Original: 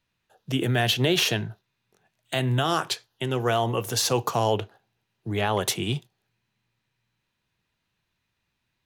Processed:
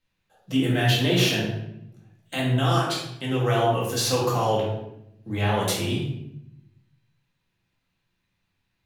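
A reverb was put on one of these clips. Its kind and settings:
rectangular room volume 230 cubic metres, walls mixed, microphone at 2.1 metres
level −6 dB

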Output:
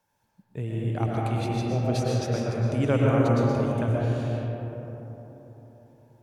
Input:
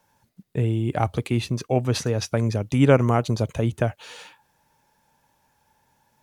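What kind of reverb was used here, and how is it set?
comb and all-pass reverb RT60 3.9 s, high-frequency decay 0.3×, pre-delay 80 ms, DRR −4.5 dB
level −9.5 dB

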